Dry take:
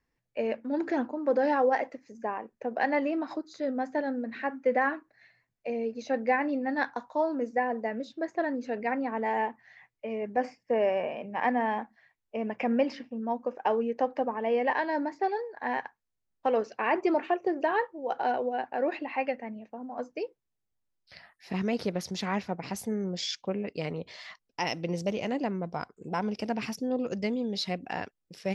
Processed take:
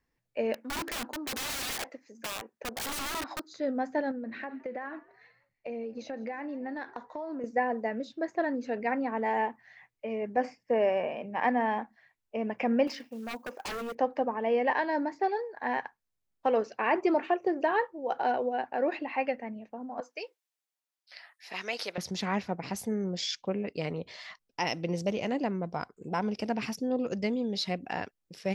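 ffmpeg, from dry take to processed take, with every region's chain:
-filter_complex "[0:a]asettb=1/sr,asplit=3[a][b][c];[a]atrim=end=0.544[d];[b]atrim=start=0.54:end=3.52,asetpts=PTS-STARTPTS,afade=t=in:d=0.004:c=qsin,afade=t=out:st=2.976:d=0.004:c=qsin,highpass=f=350:p=1,aeval=exprs='(mod(31.6*val(0)+1,2)-1)/31.6':c=same[e];[c]atrim=start=3.516[f];[d][e]acrossfade=d=0.004:c1=hsin:c2=qsin[g];[g][f]acrossfade=d=0.004:c1=qsin:c2=hsin,asettb=1/sr,asplit=3[h][i][j];[h]atrim=end=4.114[k];[i]atrim=start=4.11:end=7.44,asetpts=PTS-STARTPTS,afade=t=in:d=0.004:c=qsin,afade=t=out:st=3.326:d=0.004:c=qsin,highshelf=f=6.8k:g=-10,acompressor=threshold=-33dB:ratio=10:attack=3.2:release=140:knee=1:detection=peak,asplit=4[l][m][n][o];[m]adelay=164,afreqshift=82,volume=-23dB[p];[n]adelay=328,afreqshift=164,volume=-29.2dB[q];[o]adelay=492,afreqshift=246,volume=-35.4dB[r];[l][p][q][r]amix=inputs=4:normalize=0,atrim=end_sample=146853[s];[j]atrim=start=7.436[t];[k][s]acrossfade=d=0.004:c1=hsin:c2=qsin[u];[u][t]acrossfade=d=0.004:c1=qsin:c2=hsin,asettb=1/sr,asplit=3[v][w][x];[v]atrim=end=12.874[y];[w]atrim=start=12.87:end=13.95,asetpts=PTS-STARTPTS,afade=t=in:d=0.004:c=qsin,afade=t=out:st=1.076:d=0.004:c=qsin,aemphasis=mode=production:type=bsi,acrusher=bits=6:mode=log:mix=0:aa=0.000001,aeval=exprs='0.0282*(abs(mod(val(0)/0.0282+3,4)-2)-1)':c=same[z];[x]atrim=start=13.946[aa];[y][z]acrossfade=d=0.004:c1=hsin:c2=qsin[ab];[ab][aa]acrossfade=d=0.004:c1=qsin:c2=hsin,asettb=1/sr,asplit=3[ac][ad][ae];[ac]atrim=end=20.004[af];[ad]atrim=start=20:end=21.98,asetpts=PTS-STARTPTS,afade=t=in:d=0.004:c=qsin,afade=t=out:st=1.976:d=0.004:c=qsin,highpass=680,adynamicequalizer=threshold=0.002:dfrequency=1800:dqfactor=0.7:tfrequency=1800:tqfactor=0.7:attack=5:release=100:ratio=0.375:range=3.5:mode=boostabove:tftype=highshelf[ag];[ae]atrim=start=21.976[ah];[af][ag]acrossfade=d=0.004:c1=hsin:c2=qsin[ai];[ai][ah]acrossfade=d=0.004:c1=qsin:c2=hsin"

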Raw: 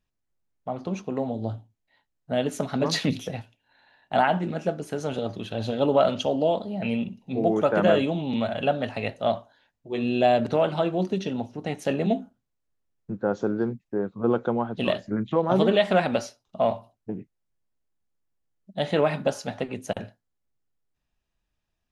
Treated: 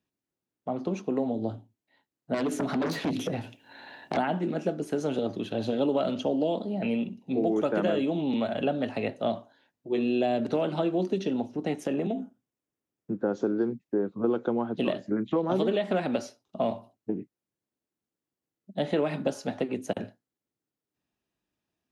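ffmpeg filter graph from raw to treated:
-filter_complex "[0:a]asettb=1/sr,asplit=3[a][b][c];[a]atrim=end=2.344[d];[b]atrim=start=2.34:end=4.17,asetpts=PTS-STARTPTS,afade=t=in:d=0.004:c=qsin,afade=t=out:st=1.826:d=0.004:c=qsin,aeval=exprs='0.299*sin(PI/2*3.55*val(0)/0.299)':c=same,acompressor=threshold=-27dB:ratio=6:attack=3.2:release=140:knee=1:detection=peak[e];[c]atrim=start=4.166[f];[d][e]acrossfade=d=0.004:c1=hsin:c2=qsin[g];[g][f]acrossfade=d=0.004:c1=qsin:c2=hsin,asettb=1/sr,asplit=3[h][i][j];[h]atrim=end=11.804[k];[i]atrim=start=11.8:end=13.22,asetpts=PTS-STARTPTS,afade=t=in:d=0.004:c=qsin,afade=t=out:st=1.416:d=0.004:c=qsin,bandreject=f=4.2k:w=5.6,acompressor=threshold=-25dB:ratio=6:attack=3.2:release=140:knee=1:detection=peak[l];[j]atrim=start=13.216[m];[k][l]acrossfade=d=0.004:c1=hsin:c2=qsin[n];[n][m]acrossfade=d=0.004:c1=qsin:c2=hsin,highpass=110,equalizer=f=310:t=o:w=1.2:g=8.5,acrossover=split=330|2200[o][p][q];[o]acompressor=threshold=-28dB:ratio=4[r];[p]acompressor=threshold=-24dB:ratio=4[s];[q]acompressor=threshold=-39dB:ratio=4[t];[r][s][t]amix=inputs=3:normalize=0,volume=-2.5dB"

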